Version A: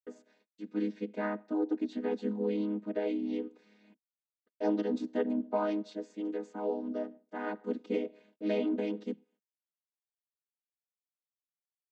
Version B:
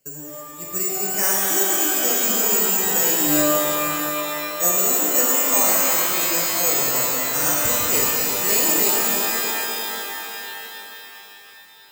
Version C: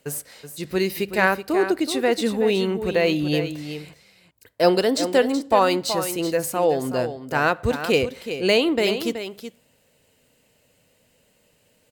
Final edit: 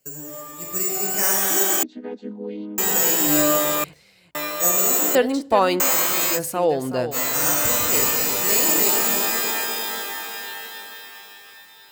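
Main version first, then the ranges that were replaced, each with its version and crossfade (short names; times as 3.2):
B
1.83–2.78 from A
3.84–4.35 from C
5.15–5.8 from C
6.37–7.14 from C, crossfade 0.06 s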